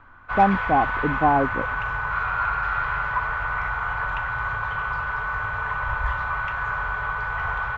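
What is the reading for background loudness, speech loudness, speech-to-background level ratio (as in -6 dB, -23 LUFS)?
-26.0 LUFS, -22.5 LUFS, 3.5 dB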